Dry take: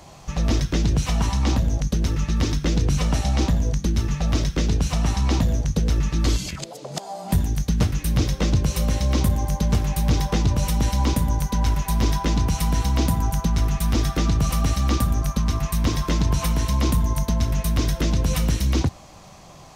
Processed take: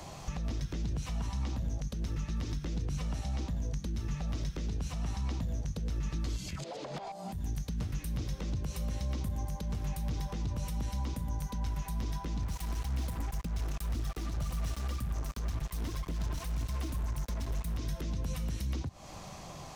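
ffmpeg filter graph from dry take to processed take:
ffmpeg -i in.wav -filter_complex "[0:a]asettb=1/sr,asplit=3[link_01][link_02][link_03];[link_01]atrim=end=6.644[link_04];[link_02]atrim=start=6.64:end=7.12,asetpts=PTS-STARTPTS,afade=type=in:duration=0.004:curve=qsin,afade=type=out:start_time=0.476:duration=0.004:curve=qsin,highpass=140,lowpass=6700,acrossover=split=4100[link_05][link_06];[link_06]acompressor=threshold=-54dB:ratio=4:attack=1:release=60[link_07];[link_05][link_07]amix=inputs=2:normalize=0,asplit=2[link_08][link_09];[link_09]highpass=frequency=720:poles=1,volume=21dB,asoftclip=type=tanh:threshold=-17dB[link_10];[link_08][link_10]amix=inputs=2:normalize=0,lowpass=frequency=5300:poles=1,volume=-6dB[link_11];[link_03]atrim=start=7.116[link_12];[link_04][link_11]acrossfade=duration=0.004:curve1=hsin:curve2=qsin[link_13];[link_13][link_12]acrossfade=duration=0.004:curve1=qsin:curve2=hsin,asettb=1/sr,asplit=3[link_14][link_15][link_16];[link_14]atrim=end=12.424[link_17];[link_15]atrim=start=12.42:end=17.77,asetpts=PTS-STARTPTS,afade=type=in:duration=0.004:curve=qsin,afade=type=out:start_time=5.346:duration=0.004:curve=qsin,aphaser=in_gain=1:out_gain=1:delay=3.6:decay=0.59:speed=1.9:type=triangular,acrusher=bits=3:mix=0:aa=0.5[link_18];[link_16]atrim=start=17.766[link_19];[link_17][link_18]acrossfade=duration=0.004:curve1=hsin:curve2=qsin[link_20];[link_20][link_19]acrossfade=duration=0.004:curve1=qsin:curve2=hsin,acompressor=threshold=-30dB:ratio=6,alimiter=level_in=2dB:limit=-24dB:level=0:latency=1:release=123,volume=-2dB,acrossover=split=210[link_21][link_22];[link_22]acompressor=threshold=-44dB:ratio=2.5[link_23];[link_21][link_23]amix=inputs=2:normalize=0" out.wav

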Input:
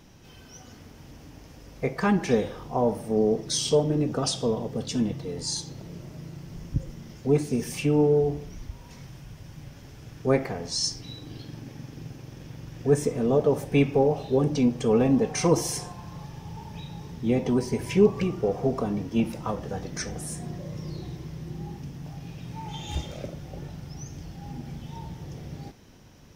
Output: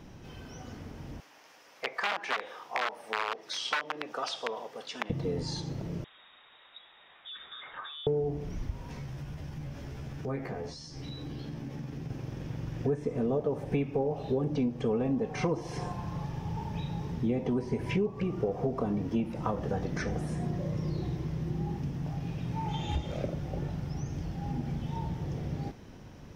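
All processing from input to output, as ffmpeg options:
ffmpeg -i in.wav -filter_complex "[0:a]asettb=1/sr,asplit=3[link_01][link_02][link_03];[link_01]atrim=end=1.204[link_04];[link_02]atrim=start=1.2:end=5.1,asetpts=PTS-STARTPTS,afade=type=in:duration=0.004:curve=qsin,afade=type=out:start_time=3.896:duration=0.004:curve=qsin,aeval=exprs='(mod(6.31*val(0)+1,2)-1)/6.31':channel_layout=same,highpass=1000[link_05];[link_03]atrim=start=5.096[link_06];[link_04][link_05]acrossfade=duration=0.004:curve1=hsin:curve2=qsin[link_07];[link_07][link_06]acrossfade=duration=0.004:curve1=qsin:curve2=hsin,asettb=1/sr,asplit=3[link_08][link_09][link_10];[link_08]atrim=end=6.044[link_11];[link_09]atrim=start=6.04:end=8.07,asetpts=PTS-STARTPTS,afade=type=in:duration=0.004:curve=qsin,afade=type=out:start_time=2.026:duration=0.004:curve=qsin,bandpass=frequency=2700:width_type=q:width=0.64,acompressor=threshold=-38dB:ratio=12:attack=3.2:release=140:knee=1:detection=peak,lowpass=frequency=3300:width_type=q:width=0.5098,lowpass=frequency=3300:width_type=q:width=0.6013,lowpass=frequency=3300:width_type=q:width=0.9,lowpass=frequency=3300:width_type=q:width=2.563,afreqshift=-3900[link_12];[link_10]atrim=start=8.066[link_13];[link_11][link_12]acrossfade=duration=0.004:curve1=hsin:curve2=qsin[link_14];[link_14][link_13]acrossfade=duration=0.004:curve1=qsin:curve2=hsin,asettb=1/sr,asplit=3[link_15][link_16][link_17];[link_15]atrim=end=8.874[link_18];[link_16]atrim=start=8.87:end=12.1,asetpts=PTS-STARTPTS,afade=type=in:duration=0.004:curve=qsin,afade=type=out:start_time=3.226:duration=0.004:curve=qsin,asplit=2[link_19][link_20];[link_20]adelay=14,volume=-2dB[link_21];[link_19][link_21]amix=inputs=2:normalize=0,atrim=end_sample=142443,acompressor=threshold=-40dB:ratio=3:attack=3.2:release=140:knee=1:detection=peak[link_22];[link_17]atrim=start=12.096[link_23];[link_18][link_22]acrossfade=duration=0.004:curve1=hsin:curve2=qsin[link_24];[link_24][link_23]acrossfade=duration=0.004:curve1=qsin:curve2=hsin,acrossover=split=4700[link_25][link_26];[link_26]acompressor=threshold=-51dB:ratio=4:attack=1:release=60[link_27];[link_25][link_27]amix=inputs=2:normalize=0,highshelf=frequency=3500:gain=-11,acompressor=threshold=-31dB:ratio=6,volume=4dB" out.wav

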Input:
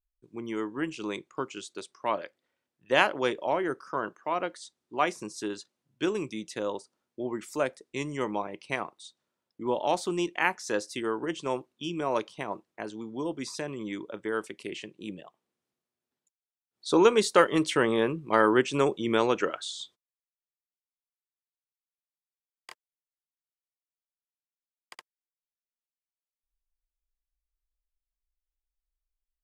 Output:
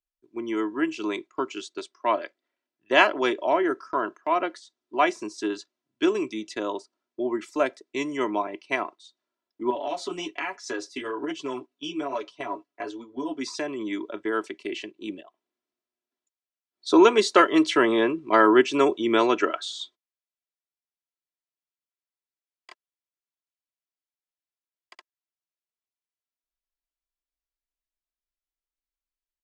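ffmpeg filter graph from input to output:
ffmpeg -i in.wav -filter_complex "[0:a]asettb=1/sr,asplit=3[link_01][link_02][link_03];[link_01]atrim=end=9.704[link_04];[link_02]atrim=start=9.7:end=13.41,asetpts=PTS-STARTPTS,afade=type=in:duration=0.004:curve=qsin,afade=type=out:start_time=3.706:duration=0.004:curve=qsin,aecho=1:1:7.1:0.81,atrim=end_sample=163611,flanger=delay=4.7:depth=8:regen=-33:speed=1.2:shape=triangular,acompressor=threshold=-30dB:ratio=5:attack=3.2:release=140:knee=1:detection=peak[link_05];[link_03]atrim=start=13.406[link_06];[link_04][link_05]acrossfade=duration=0.004:curve1=hsin:curve2=qsin[link_07];[link_07][link_06]acrossfade=duration=0.004:curve1=qsin:curve2=hsin,acrossover=split=180 7100:gain=0.224 1 0.112[link_08][link_09][link_10];[link_08][link_09][link_10]amix=inputs=3:normalize=0,aecho=1:1:3:0.59,agate=range=-7dB:threshold=-43dB:ratio=16:detection=peak,volume=3.5dB" out.wav

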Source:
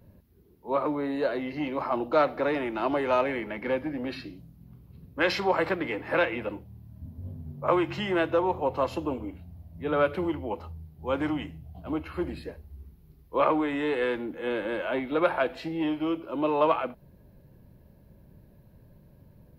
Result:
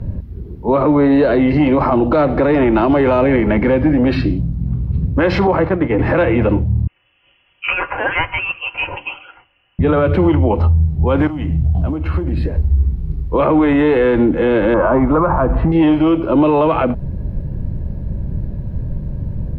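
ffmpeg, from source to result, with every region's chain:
ffmpeg -i in.wav -filter_complex "[0:a]asettb=1/sr,asplit=3[link_01][link_02][link_03];[link_01]atrim=end=5.474[link_04];[link_02]atrim=start=5.47:end=5.99,asetpts=PTS-STARTPTS,afade=type=in:duration=0.004:curve=qsin,afade=type=out:start_time=0.516:duration=0.004:curve=qsin,lowpass=frequency=1600:poles=1,agate=range=-33dB:threshold=-28dB:ratio=3:release=100:detection=peak[link_05];[link_03]atrim=start=5.986[link_06];[link_04][link_05]acrossfade=duration=0.004:curve1=hsin:curve2=qsin[link_07];[link_07][link_06]acrossfade=duration=0.004:curve1=qsin:curve2=hsin,asettb=1/sr,asplit=3[link_08][link_09][link_10];[link_08]atrim=end=6.874[link_11];[link_09]atrim=start=6.87:end=9.79,asetpts=PTS-STARTPTS,afade=type=in:duration=0.004:curve=qsin,afade=type=out:start_time=2.916:duration=0.004:curve=qsin,highpass=frequency=890:width=0.5412,highpass=frequency=890:width=1.3066,aecho=1:1:4.6:0.56,atrim=end_sample=128772,lowpass=frequency=3100:width_type=q:width=0.5098,lowpass=frequency=3100:width_type=q:width=0.6013,lowpass=frequency=3100:width_type=q:width=0.9,lowpass=frequency=3100:width_type=q:width=2.563,afreqshift=-3600[link_12];[link_10]atrim=start=9.786[link_13];[link_11][link_12]acrossfade=duration=0.004:curve1=hsin:curve2=qsin[link_14];[link_14][link_13]acrossfade=duration=0.004:curve1=qsin:curve2=hsin,asettb=1/sr,asplit=3[link_15][link_16][link_17];[link_15]atrim=end=11.274[link_18];[link_16]atrim=start=11.27:end=12.68,asetpts=PTS-STARTPTS,afade=type=in:duration=0.004:curve=qsin,afade=type=out:start_time=1.406:duration=0.004:curve=qsin,acrusher=bits=8:mode=log:mix=0:aa=0.000001,acompressor=threshold=-42dB:ratio=12:attack=3.2:release=140:knee=1:detection=peak[link_19];[link_17]atrim=start=12.676[link_20];[link_18][link_19]acrossfade=duration=0.004:curve1=hsin:curve2=qsin[link_21];[link_21][link_20]acrossfade=duration=0.004:curve1=qsin:curve2=hsin,asettb=1/sr,asplit=3[link_22][link_23][link_24];[link_22]atrim=end=14.744[link_25];[link_23]atrim=start=14.74:end=15.72,asetpts=PTS-STARTPTS,afade=type=in:duration=0.004:curve=qsin,afade=type=out:start_time=0.976:duration=0.004:curve=qsin,asubboost=boost=10:cutoff=200,lowpass=frequency=1100:width_type=q:width=4.4[link_26];[link_24]atrim=start=15.716[link_27];[link_25][link_26]acrossfade=duration=0.004:curve1=hsin:curve2=qsin[link_28];[link_28][link_27]acrossfade=duration=0.004:curve1=qsin:curve2=hsin,aemphasis=mode=reproduction:type=riaa,acrossover=split=500|1700[link_29][link_30][link_31];[link_29]acompressor=threshold=-28dB:ratio=4[link_32];[link_30]acompressor=threshold=-31dB:ratio=4[link_33];[link_31]acompressor=threshold=-43dB:ratio=4[link_34];[link_32][link_33][link_34]amix=inputs=3:normalize=0,alimiter=level_in=24dB:limit=-1dB:release=50:level=0:latency=1,volume=-5dB" out.wav

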